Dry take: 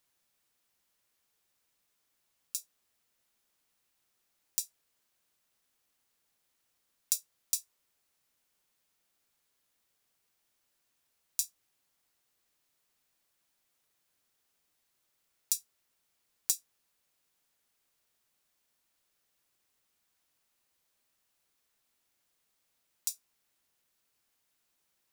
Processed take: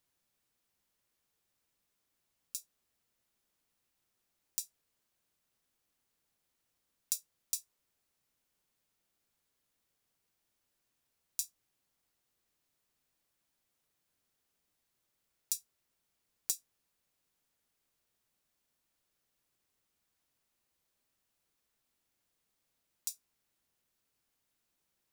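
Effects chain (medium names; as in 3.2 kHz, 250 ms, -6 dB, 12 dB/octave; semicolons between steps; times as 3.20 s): bass shelf 430 Hz +6.5 dB; trim -4.5 dB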